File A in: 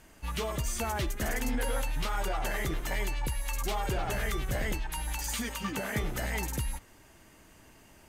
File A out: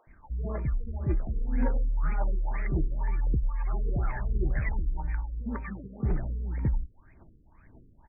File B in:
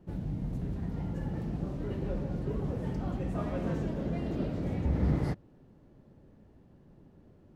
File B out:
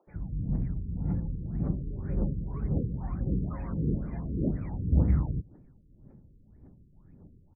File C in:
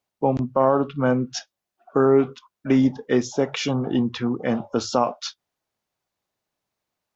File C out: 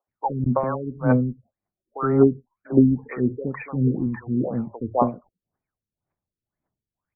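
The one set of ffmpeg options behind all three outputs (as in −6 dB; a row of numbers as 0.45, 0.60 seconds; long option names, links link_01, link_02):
-filter_complex "[0:a]acrossover=split=490[link_01][link_02];[link_01]adelay=70[link_03];[link_03][link_02]amix=inputs=2:normalize=0,aphaser=in_gain=1:out_gain=1:delay=1.2:decay=0.72:speed=1.8:type=triangular,afftfilt=real='re*lt(b*sr/1024,480*pow(2600/480,0.5+0.5*sin(2*PI*2*pts/sr)))':imag='im*lt(b*sr/1024,480*pow(2600/480,0.5+0.5*sin(2*PI*2*pts/sr)))':win_size=1024:overlap=0.75,volume=-4dB"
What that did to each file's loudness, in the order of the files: +1.0, +2.5, −0.5 LU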